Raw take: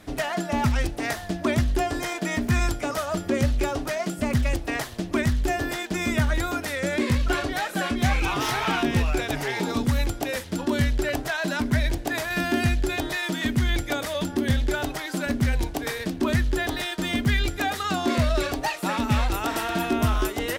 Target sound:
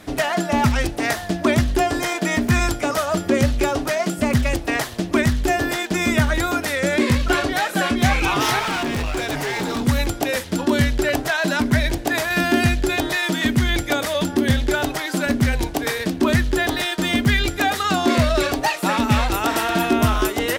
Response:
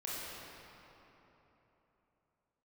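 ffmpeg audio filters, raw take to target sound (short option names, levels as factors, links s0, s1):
-filter_complex "[0:a]lowshelf=f=74:g=-7.5,asettb=1/sr,asplit=3[s0][s1][s2];[s0]atrim=end=8.594[s3];[s1]atrim=start=8.59:end=9.87,asetpts=PTS-STARTPTS,afade=t=in:d=0.004:c=qsin,afade=t=out:st=1.276:d=0.004:c=qsin,volume=23.7,asoftclip=hard,volume=0.0422[s4];[s2]atrim=start=9.866[s5];[s3][s4]acrossfade=d=0.004:c1=hsin:c2=qsin[s6];[s6][s5]acrossfade=d=0.004:c1=qsin:c2=hsin,volume=2.11"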